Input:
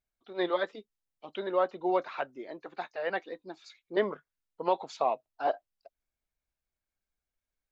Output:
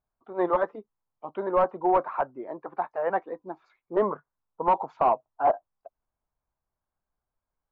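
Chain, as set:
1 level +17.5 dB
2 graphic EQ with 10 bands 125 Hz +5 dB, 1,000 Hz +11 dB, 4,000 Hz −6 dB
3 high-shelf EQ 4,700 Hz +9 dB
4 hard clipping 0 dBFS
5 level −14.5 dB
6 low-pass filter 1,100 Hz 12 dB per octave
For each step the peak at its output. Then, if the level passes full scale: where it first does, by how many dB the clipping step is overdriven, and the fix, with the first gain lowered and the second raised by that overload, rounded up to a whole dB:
+3.0, +9.0, +9.5, 0.0, −14.5, −14.0 dBFS
step 1, 9.5 dB
step 1 +7.5 dB, step 5 −4.5 dB

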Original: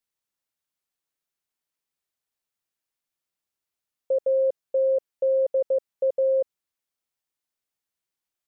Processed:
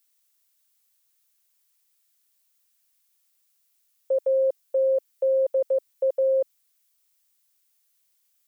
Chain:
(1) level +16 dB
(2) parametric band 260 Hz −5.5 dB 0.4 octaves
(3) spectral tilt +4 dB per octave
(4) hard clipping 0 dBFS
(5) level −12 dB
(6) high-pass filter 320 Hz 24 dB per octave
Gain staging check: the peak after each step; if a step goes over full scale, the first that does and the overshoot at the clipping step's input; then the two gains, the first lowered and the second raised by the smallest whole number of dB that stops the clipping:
−2.0, −2.0, −5.5, −5.5, −17.5, −17.5 dBFS
no step passes full scale

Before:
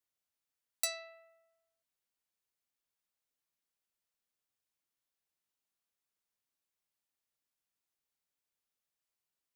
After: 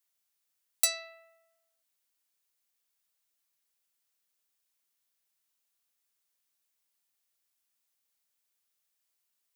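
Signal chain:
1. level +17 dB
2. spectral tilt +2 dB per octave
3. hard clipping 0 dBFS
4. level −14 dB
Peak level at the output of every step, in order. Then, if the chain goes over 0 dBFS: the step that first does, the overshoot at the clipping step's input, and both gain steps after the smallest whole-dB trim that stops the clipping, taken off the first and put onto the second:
−0.5, +7.0, 0.0, −14.0 dBFS
step 2, 7.0 dB
step 1 +10 dB, step 4 −7 dB

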